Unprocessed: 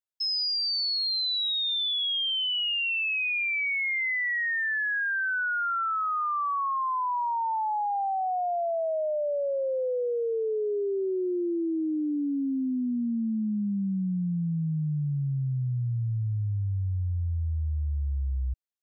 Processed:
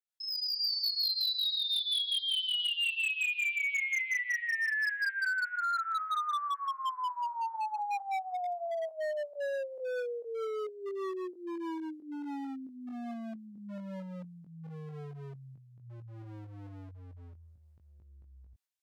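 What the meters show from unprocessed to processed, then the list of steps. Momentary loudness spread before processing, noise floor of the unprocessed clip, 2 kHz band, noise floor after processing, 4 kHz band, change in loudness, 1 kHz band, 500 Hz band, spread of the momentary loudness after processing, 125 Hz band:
5 LU, -28 dBFS, -4.5 dB, -57 dBFS, -4.0 dB, -5.0 dB, -6.0 dB, -8.5 dB, 19 LU, -19.0 dB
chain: on a send: thin delay 0.244 s, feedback 65%, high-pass 2900 Hz, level -12 dB; on the sum: limiter -31 dBFS, peak gain reduction 9.5 dB; rotary speaker horn 5.5 Hz, later 0.85 Hz, at 13.42; in parallel at -3 dB: pump 135 bpm, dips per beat 2, -21 dB, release 0.174 s; on the sum: chorus 0.12 Hz, delay 19.5 ms, depth 2 ms; hard clip -33.5 dBFS, distortion -14 dB; AGC gain up to 7 dB; HPF 910 Hz 6 dB/oct

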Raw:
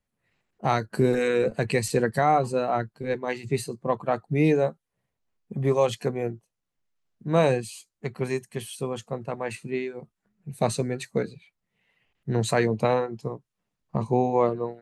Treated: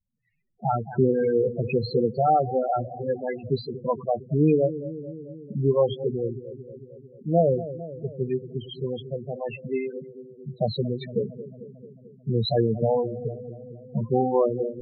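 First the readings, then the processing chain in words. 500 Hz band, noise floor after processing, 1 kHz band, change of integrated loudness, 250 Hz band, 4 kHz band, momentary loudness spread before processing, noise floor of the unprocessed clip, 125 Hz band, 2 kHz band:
+1.0 dB, -52 dBFS, -0.5 dB, +0.5 dB, +0.5 dB, 0.0 dB, 14 LU, -83 dBFS, +1.0 dB, -12.0 dB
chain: darkening echo 0.224 s, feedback 71%, low-pass 1100 Hz, level -12.5 dB; vibrato 0.44 Hz 36 cents; resonant high shelf 5700 Hz -10.5 dB, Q 3; loudest bins only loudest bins 8; gain +1.5 dB

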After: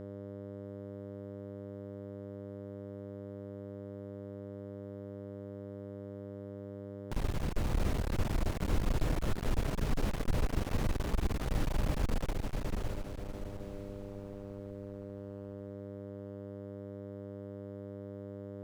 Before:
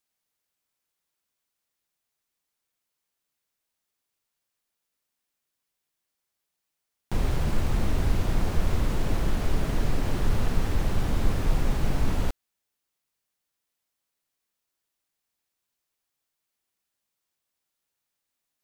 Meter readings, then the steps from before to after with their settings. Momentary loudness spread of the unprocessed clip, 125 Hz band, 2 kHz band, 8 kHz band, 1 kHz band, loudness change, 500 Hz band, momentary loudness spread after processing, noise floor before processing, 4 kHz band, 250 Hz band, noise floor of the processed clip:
2 LU, -5.5 dB, -5.5 dB, -5.5 dB, -5.5 dB, -10.5 dB, -1.0 dB, 10 LU, -83 dBFS, -5.5 dB, -3.5 dB, -44 dBFS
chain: diffused feedback echo 0.612 s, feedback 40%, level -3 dB; buzz 100 Hz, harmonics 6, -38 dBFS -1 dB/oct; one-sided clip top -32 dBFS; gain -5.5 dB

